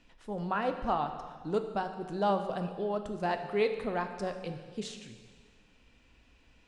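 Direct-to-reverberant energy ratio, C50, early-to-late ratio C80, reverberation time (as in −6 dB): 6.5 dB, 8.5 dB, 9.5 dB, 1.7 s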